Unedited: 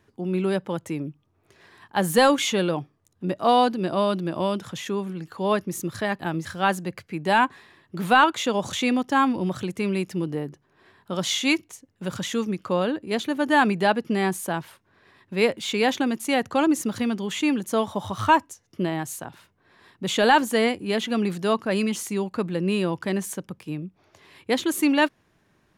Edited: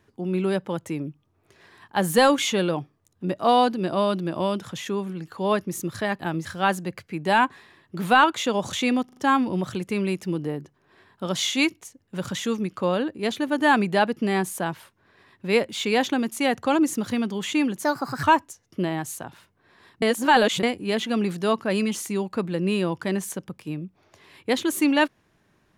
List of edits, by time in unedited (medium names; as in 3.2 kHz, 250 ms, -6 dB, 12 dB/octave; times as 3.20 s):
9.05 s: stutter 0.04 s, 4 plays
17.72–18.24 s: speed 133%
20.03–20.64 s: reverse